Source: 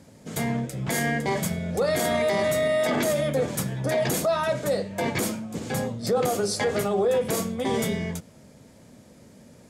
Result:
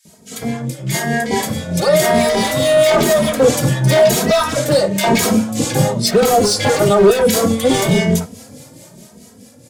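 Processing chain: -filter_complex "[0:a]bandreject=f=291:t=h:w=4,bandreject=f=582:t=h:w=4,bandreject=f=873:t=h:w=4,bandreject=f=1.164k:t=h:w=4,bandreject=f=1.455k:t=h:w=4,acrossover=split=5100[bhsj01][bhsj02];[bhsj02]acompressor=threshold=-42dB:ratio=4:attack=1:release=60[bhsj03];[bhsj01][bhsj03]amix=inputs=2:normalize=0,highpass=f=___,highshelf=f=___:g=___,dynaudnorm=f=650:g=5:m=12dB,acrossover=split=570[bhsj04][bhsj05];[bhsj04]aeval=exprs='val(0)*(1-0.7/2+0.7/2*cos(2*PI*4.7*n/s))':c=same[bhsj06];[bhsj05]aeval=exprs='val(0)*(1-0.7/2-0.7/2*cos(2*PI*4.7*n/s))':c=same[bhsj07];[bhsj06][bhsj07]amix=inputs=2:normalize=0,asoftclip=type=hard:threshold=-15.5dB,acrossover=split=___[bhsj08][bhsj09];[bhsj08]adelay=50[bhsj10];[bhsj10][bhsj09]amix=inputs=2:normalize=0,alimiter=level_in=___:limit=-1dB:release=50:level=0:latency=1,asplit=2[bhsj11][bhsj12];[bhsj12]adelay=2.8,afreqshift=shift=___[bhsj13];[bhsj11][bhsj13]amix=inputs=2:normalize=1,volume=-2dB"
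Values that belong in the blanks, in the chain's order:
82, 4.6k, 10, 1800, 12.5dB, 1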